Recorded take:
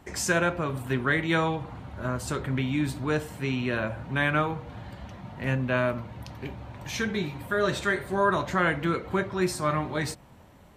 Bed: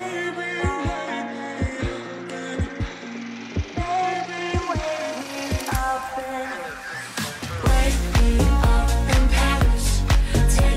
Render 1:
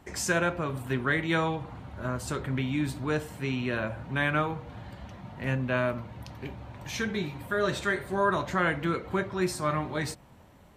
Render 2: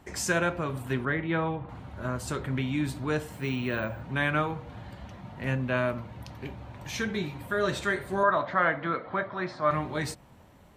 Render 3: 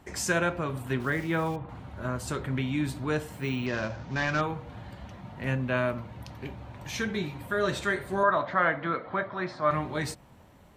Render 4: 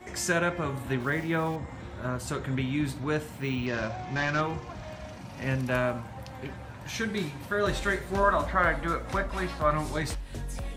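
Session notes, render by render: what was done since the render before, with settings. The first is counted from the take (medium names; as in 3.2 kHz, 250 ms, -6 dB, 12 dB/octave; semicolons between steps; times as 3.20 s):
trim -2 dB
1.05–1.69 s: distance through air 400 m; 3.32–4.02 s: careless resampling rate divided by 2×, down none, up hold; 8.23–9.71 s: cabinet simulation 170–3800 Hz, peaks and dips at 190 Hz -4 dB, 380 Hz -8 dB, 640 Hz +7 dB, 1.2 kHz +5 dB, 1.8 kHz +3 dB, 2.7 kHz -9 dB
1.00–1.56 s: small samples zeroed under -42.5 dBFS; 3.66–4.41 s: CVSD coder 32 kbps
add bed -18.5 dB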